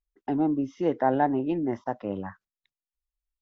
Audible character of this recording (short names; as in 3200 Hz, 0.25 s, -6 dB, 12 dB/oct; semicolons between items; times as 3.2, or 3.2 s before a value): noise floor -95 dBFS; spectral tilt -4.5 dB/oct